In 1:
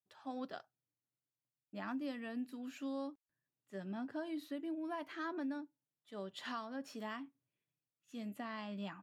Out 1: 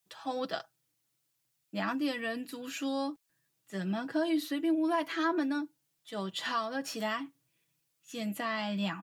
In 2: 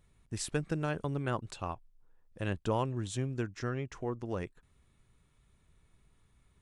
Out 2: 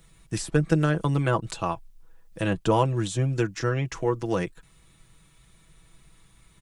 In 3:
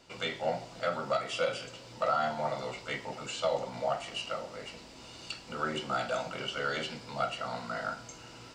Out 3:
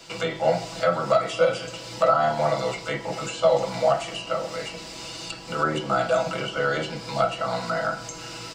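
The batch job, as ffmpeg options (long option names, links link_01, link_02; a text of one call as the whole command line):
ffmpeg -i in.wav -filter_complex "[0:a]highshelf=frequency=2200:gain=7.5,aecho=1:1:6.1:0.63,acrossover=split=100|1300[link_01][link_02][link_03];[link_03]acompressor=threshold=-43dB:ratio=6[link_04];[link_01][link_02][link_04]amix=inputs=3:normalize=0,volume=8.5dB" out.wav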